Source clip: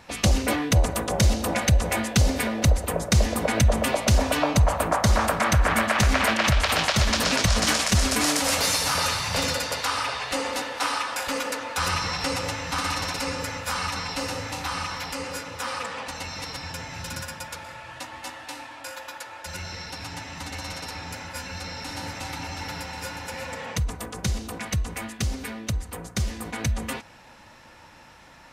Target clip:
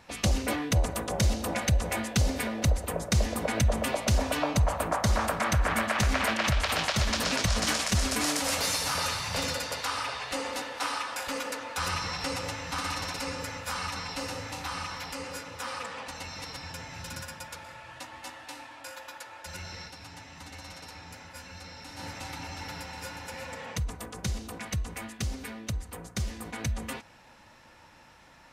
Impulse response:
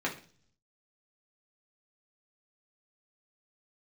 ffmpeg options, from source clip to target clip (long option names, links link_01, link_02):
-filter_complex "[0:a]asplit=3[link_01][link_02][link_03];[link_01]afade=type=out:start_time=19.87:duration=0.02[link_04];[link_02]flanger=delay=9.8:depth=7.3:regen=-86:speed=1.9:shape=sinusoidal,afade=type=in:start_time=19.87:duration=0.02,afade=type=out:start_time=21.98:duration=0.02[link_05];[link_03]afade=type=in:start_time=21.98:duration=0.02[link_06];[link_04][link_05][link_06]amix=inputs=3:normalize=0,volume=-5.5dB"